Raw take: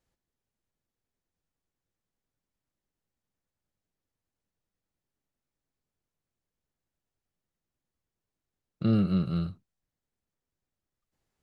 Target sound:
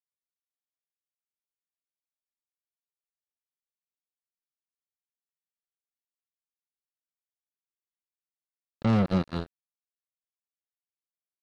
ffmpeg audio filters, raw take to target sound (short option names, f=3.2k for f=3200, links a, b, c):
-filter_complex "[0:a]acrossover=split=1800[a][b];[b]alimiter=level_in=16.5dB:limit=-24dB:level=0:latency=1:release=102,volume=-16.5dB[c];[a][c]amix=inputs=2:normalize=0,acrusher=bits=3:mix=0:aa=0.5"